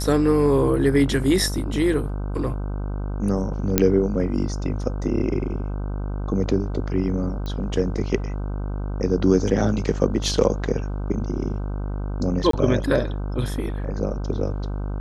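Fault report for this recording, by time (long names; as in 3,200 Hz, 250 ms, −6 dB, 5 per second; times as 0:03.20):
mains buzz 50 Hz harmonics 31 −27 dBFS
0:03.78: click −1 dBFS
0:07.46: click −19 dBFS
0:12.51–0:12.53: drop-out 23 ms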